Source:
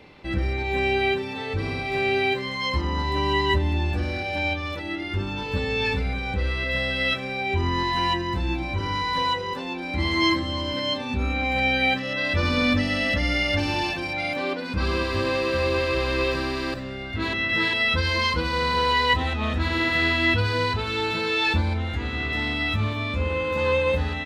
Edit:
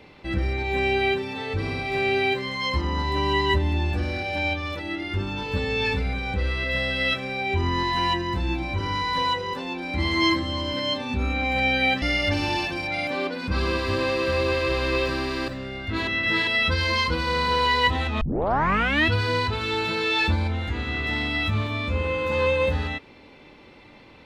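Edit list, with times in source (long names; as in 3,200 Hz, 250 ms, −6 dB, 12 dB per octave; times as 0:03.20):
0:12.02–0:13.28: remove
0:19.47: tape start 0.86 s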